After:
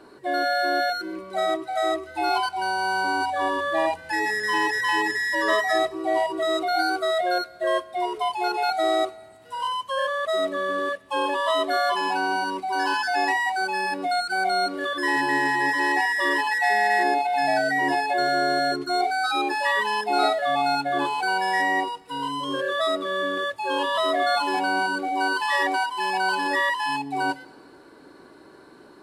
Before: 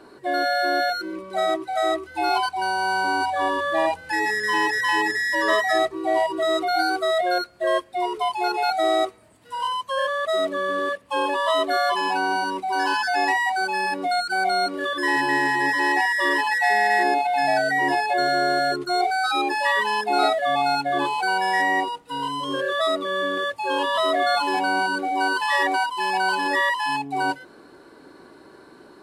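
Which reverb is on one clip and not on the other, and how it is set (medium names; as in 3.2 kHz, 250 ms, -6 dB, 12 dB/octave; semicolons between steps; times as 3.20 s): FDN reverb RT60 1.7 s, low-frequency decay 0.9×, high-frequency decay 0.95×, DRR 18.5 dB; trim -1.5 dB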